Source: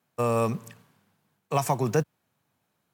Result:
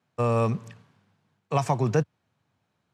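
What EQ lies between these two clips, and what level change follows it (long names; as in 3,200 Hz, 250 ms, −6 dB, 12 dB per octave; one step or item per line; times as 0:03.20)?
low-pass filter 5,700 Hz 12 dB per octave
parametric band 93 Hz +6.5 dB 1.1 octaves
0.0 dB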